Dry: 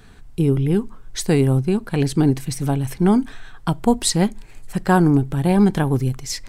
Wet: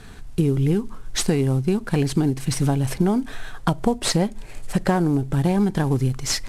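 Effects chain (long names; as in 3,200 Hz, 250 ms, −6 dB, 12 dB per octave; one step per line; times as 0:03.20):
variable-slope delta modulation 64 kbit/s
0:02.80–0:05.30: parametric band 570 Hz +6 dB 0.64 octaves
downward compressor 10 to 1, threshold −21 dBFS, peak gain reduction 12.5 dB
level +5 dB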